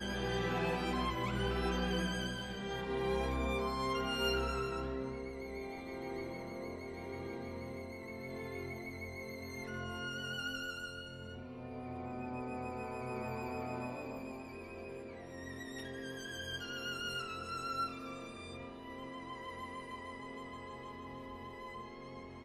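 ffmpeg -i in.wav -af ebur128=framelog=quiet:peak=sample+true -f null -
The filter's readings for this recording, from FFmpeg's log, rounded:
Integrated loudness:
  I:         -40.5 LUFS
  Threshold: -50.5 LUFS
Loudness range:
  LRA:         8.2 LU
  Threshold: -60.8 LUFS
  LRA low:   -44.5 LUFS
  LRA high:  -36.3 LUFS
Sample peak:
  Peak:      -21.8 dBFS
True peak:
  Peak:      -21.7 dBFS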